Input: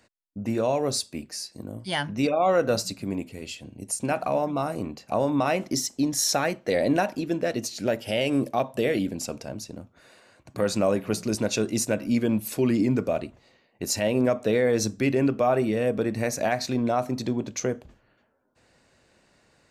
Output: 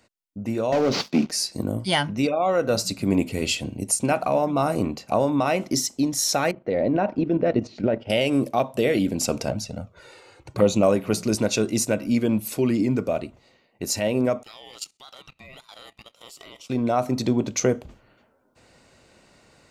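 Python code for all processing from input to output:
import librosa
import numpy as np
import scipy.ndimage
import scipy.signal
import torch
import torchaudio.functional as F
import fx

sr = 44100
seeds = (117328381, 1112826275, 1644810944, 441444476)

y = fx.chain(x, sr, fx.cvsd(bps=32000),
    fx.highpass_res(hz=190.0, q=2.0),
    fx.leveller(passes=2), at=(0.72, 1.31))
y = fx.chain(y, sr, fx.spacing_loss(db_at_10k=40),
    fx.level_steps(step_db=10), at=(6.51, 8.1))
y = fx.chain(y, sr, fx.high_shelf(hz=11000.0, db=-11.5),
    fx.env_flanger(rest_ms=2.5, full_db=-23.0), at=(9.5, 10.83))
y = fx.chain(y, sr, fx.highpass(hz=1000.0, slope=24),
    fx.level_steps(step_db=14),
    fx.ring_mod(carrier_hz=1300.0), at=(14.43, 16.7))
y = fx.notch(y, sr, hz=1700.0, q=10.0)
y = fx.rider(y, sr, range_db=10, speed_s=0.5)
y = y * 10.0 ** (3.5 / 20.0)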